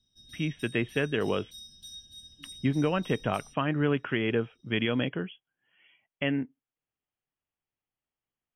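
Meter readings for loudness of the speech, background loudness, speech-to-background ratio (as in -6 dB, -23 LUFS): -30.0 LUFS, -47.5 LUFS, 17.5 dB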